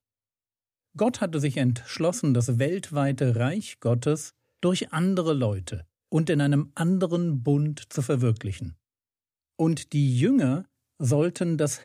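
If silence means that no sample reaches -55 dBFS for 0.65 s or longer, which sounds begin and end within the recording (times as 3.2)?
0.95–8.75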